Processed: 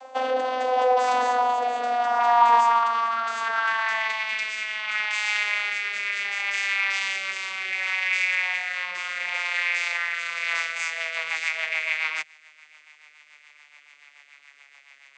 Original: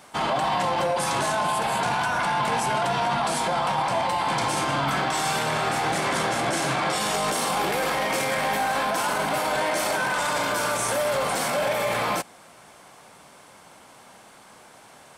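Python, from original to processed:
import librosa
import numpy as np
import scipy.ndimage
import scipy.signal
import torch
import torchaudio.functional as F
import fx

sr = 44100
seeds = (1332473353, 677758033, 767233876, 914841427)

p1 = fx.vocoder_glide(x, sr, note=60, semitones=-11)
p2 = fx.rotary_switch(p1, sr, hz=0.7, then_hz=7.0, switch_at_s=10.23)
p3 = fx.filter_sweep_highpass(p2, sr, from_hz=640.0, to_hz=2200.0, start_s=1.83, end_s=4.31, q=4.6)
p4 = fx.dynamic_eq(p3, sr, hz=640.0, q=1.4, threshold_db=-35.0, ratio=4.0, max_db=-7)
p5 = fx.rider(p4, sr, range_db=3, speed_s=0.5)
y = p4 + (p5 * 10.0 ** (-2.0 / 20.0))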